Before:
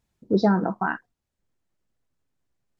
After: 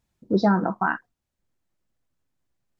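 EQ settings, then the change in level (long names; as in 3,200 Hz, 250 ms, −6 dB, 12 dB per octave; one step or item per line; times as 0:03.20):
notch filter 430 Hz, Q 12
dynamic equaliser 1,200 Hz, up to +4 dB, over −38 dBFS, Q 1.6
0.0 dB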